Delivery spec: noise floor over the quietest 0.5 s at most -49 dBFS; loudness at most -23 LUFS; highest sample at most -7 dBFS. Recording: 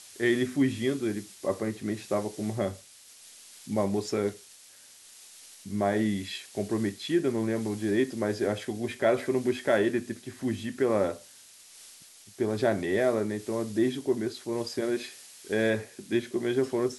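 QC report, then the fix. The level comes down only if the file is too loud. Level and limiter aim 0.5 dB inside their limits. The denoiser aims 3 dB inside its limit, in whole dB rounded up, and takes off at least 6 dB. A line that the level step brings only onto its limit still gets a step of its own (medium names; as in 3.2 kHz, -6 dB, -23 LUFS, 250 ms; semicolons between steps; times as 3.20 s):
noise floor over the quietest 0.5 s -53 dBFS: pass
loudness -29.5 LUFS: pass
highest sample -13.0 dBFS: pass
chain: none needed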